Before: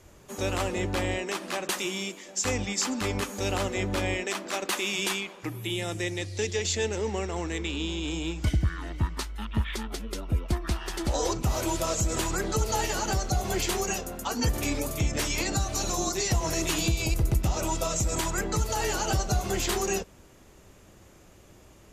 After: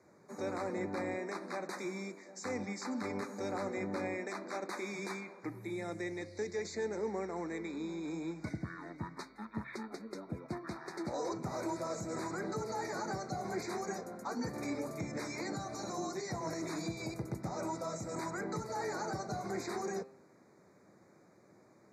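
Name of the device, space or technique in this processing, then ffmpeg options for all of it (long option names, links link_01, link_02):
PA system with an anti-feedback notch: -af "highpass=frequency=140:width=0.5412,highpass=frequency=140:width=1.3066,asuperstop=centerf=3000:order=12:qfactor=2.2,alimiter=limit=-21.5dB:level=0:latency=1:release=10,aemphasis=mode=reproduction:type=75fm,bandreject=frequency=132.4:width_type=h:width=4,bandreject=frequency=264.8:width_type=h:width=4,bandreject=frequency=397.2:width_type=h:width=4,bandreject=frequency=529.6:width_type=h:width=4,bandreject=frequency=662:width_type=h:width=4,bandreject=frequency=794.4:width_type=h:width=4,bandreject=frequency=926.8:width_type=h:width=4,bandreject=frequency=1059.2:width_type=h:width=4,bandreject=frequency=1191.6:width_type=h:width=4,bandreject=frequency=1324:width_type=h:width=4,bandreject=frequency=1456.4:width_type=h:width=4,bandreject=frequency=1588.8:width_type=h:width=4,bandreject=frequency=1721.2:width_type=h:width=4,bandreject=frequency=1853.6:width_type=h:width=4,bandreject=frequency=1986:width_type=h:width=4,bandreject=frequency=2118.4:width_type=h:width=4,bandreject=frequency=2250.8:width_type=h:width=4,bandreject=frequency=2383.2:width_type=h:width=4,bandreject=frequency=2515.6:width_type=h:width=4,bandreject=frequency=2648:width_type=h:width=4,bandreject=frequency=2780.4:width_type=h:width=4,bandreject=frequency=2912.8:width_type=h:width=4,bandreject=frequency=3045.2:width_type=h:width=4,bandreject=frequency=3177.6:width_type=h:width=4,bandreject=frequency=3310:width_type=h:width=4,bandreject=frequency=3442.4:width_type=h:width=4,bandreject=frequency=3574.8:width_type=h:width=4,bandreject=frequency=3707.2:width_type=h:width=4,bandreject=frequency=3839.6:width_type=h:width=4,bandreject=frequency=3972:width_type=h:width=4,bandreject=frequency=4104.4:width_type=h:width=4,bandreject=frequency=4236.8:width_type=h:width=4,bandreject=frequency=4369.2:width_type=h:width=4,bandreject=frequency=4501.6:width_type=h:width=4,bandreject=frequency=4634:width_type=h:width=4,volume=-6.5dB"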